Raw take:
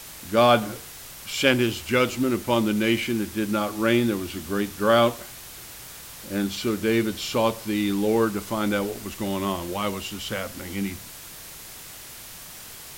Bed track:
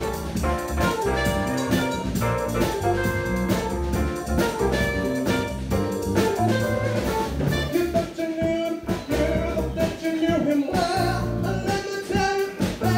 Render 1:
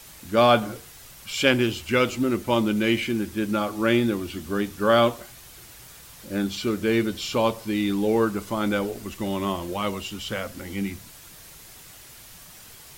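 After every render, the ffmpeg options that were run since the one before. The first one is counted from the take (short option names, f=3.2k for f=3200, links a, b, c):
-af "afftdn=nr=6:nf=-42"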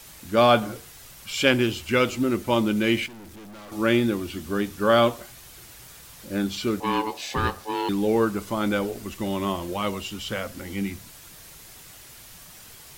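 -filter_complex "[0:a]asettb=1/sr,asplit=3[a][b][c];[a]atrim=end=3.064[d];[b]atrim=start=3.06:end=3.72,asetpts=PTS-STARTPTS,afade=t=in:d=0.004:c=qsin,afade=t=out:st=0.656:d=0.004:c=qsin,aeval=exprs='(tanh(126*val(0)+0.3)-tanh(0.3))/126':c=same[e];[c]atrim=start=3.716[f];[d][e]acrossfade=d=0.004:c1=hsin:c2=qsin[g];[g][f]acrossfade=d=0.004:c1=qsin:c2=hsin,asettb=1/sr,asplit=3[h][i][j];[h]atrim=end=6.804[k];[i]atrim=start=6.8:end=7.89,asetpts=PTS-STARTPTS,afade=t=in:d=0.004:c=qsin,afade=t=out:st=1.086:d=0.004:c=qsin,aeval=exprs='val(0)*sin(2*PI*650*n/s)':c=same[l];[j]atrim=start=7.886[m];[k][l]acrossfade=d=0.004:c1=hsin:c2=qsin[n];[n][m]acrossfade=d=0.004:c1=qsin:c2=hsin"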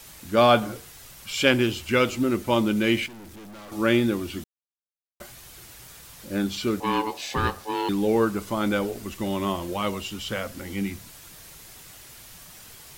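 -filter_complex "[0:a]asplit=3[a][b][c];[a]atrim=end=4.44,asetpts=PTS-STARTPTS,afade=t=out:st=4.436:d=0.004:c=hsin[d];[b]atrim=start=4.44:end=5.2,asetpts=PTS-STARTPTS,volume=0[e];[c]atrim=start=5.2,asetpts=PTS-STARTPTS,afade=t=in:d=0.004:c=hsin[f];[d][e][f]concat=n=3:v=0:a=1"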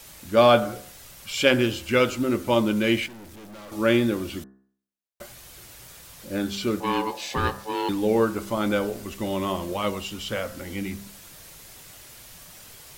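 -af "equalizer=f=560:w=4.1:g=4,bandreject=f=66.31:t=h:w=4,bandreject=f=132.62:t=h:w=4,bandreject=f=198.93:t=h:w=4,bandreject=f=265.24:t=h:w=4,bandreject=f=331.55:t=h:w=4,bandreject=f=397.86:t=h:w=4,bandreject=f=464.17:t=h:w=4,bandreject=f=530.48:t=h:w=4,bandreject=f=596.79:t=h:w=4,bandreject=f=663.1:t=h:w=4,bandreject=f=729.41:t=h:w=4,bandreject=f=795.72:t=h:w=4,bandreject=f=862.03:t=h:w=4,bandreject=f=928.34:t=h:w=4,bandreject=f=994.65:t=h:w=4,bandreject=f=1.06096k:t=h:w=4,bandreject=f=1.12727k:t=h:w=4,bandreject=f=1.19358k:t=h:w=4,bandreject=f=1.25989k:t=h:w=4,bandreject=f=1.3262k:t=h:w=4,bandreject=f=1.39251k:t=h:w=4,bandreject=f=1.45882k:t=h:w=4,bandreject=f=1.52513k:t=h:w=4,bandreject=f=1.59144k:t=h:w=4,bandreject=f=1.65775k:t=h:w=4,bandreject=f=1.72406k:t=h:w=4,bandreject=f=1.79037k:t=h:w=4,bandreject=f=1.85668k:t=h:w=4,bandreject=f=1.92299k:t=h:w=4"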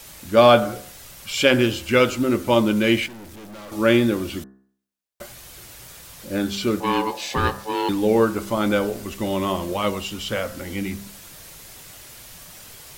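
-af "volume=3.5dB,alimiter=limit=-3dB:level=0:latency=1"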